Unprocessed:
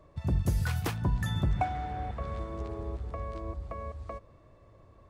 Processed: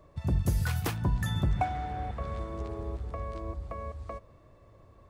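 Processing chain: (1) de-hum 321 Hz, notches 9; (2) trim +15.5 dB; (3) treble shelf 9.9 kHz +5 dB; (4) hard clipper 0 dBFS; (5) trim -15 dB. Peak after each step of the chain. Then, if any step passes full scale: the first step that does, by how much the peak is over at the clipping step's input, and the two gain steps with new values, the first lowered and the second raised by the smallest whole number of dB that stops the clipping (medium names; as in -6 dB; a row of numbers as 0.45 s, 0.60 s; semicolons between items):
-18.0 dBFS, -2.5 dBFS, -2.5 dBFS, -2.5 dBFS, -17.5 dBFS; nothing clips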